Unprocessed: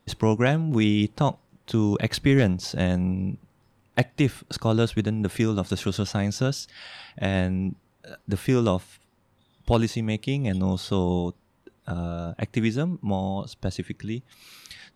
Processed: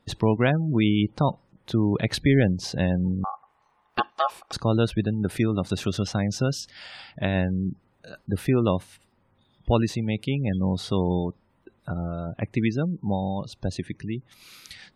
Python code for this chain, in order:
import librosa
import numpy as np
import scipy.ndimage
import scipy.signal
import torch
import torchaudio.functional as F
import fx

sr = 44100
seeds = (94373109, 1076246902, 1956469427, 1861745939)

y = fx.ring_mod(x, sr, carrier_hz=960.0, at=(3.24, 4.53))
y = fx.spec_gate(y, sr, threshold_db=-30, keep='strong')